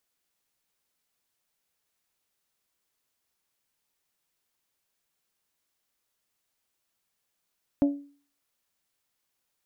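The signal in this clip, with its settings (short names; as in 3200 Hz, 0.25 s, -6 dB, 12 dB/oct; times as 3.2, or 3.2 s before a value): glass hit bell, lowest mode 284 Hz, modes 4, decay 0.43 s, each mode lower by 9.5 dB, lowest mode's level -16 dB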